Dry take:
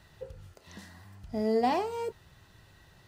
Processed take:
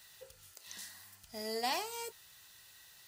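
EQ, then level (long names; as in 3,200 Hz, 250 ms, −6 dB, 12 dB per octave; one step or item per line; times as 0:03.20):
first-order pre-emphasis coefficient 0.97
+10.5 dB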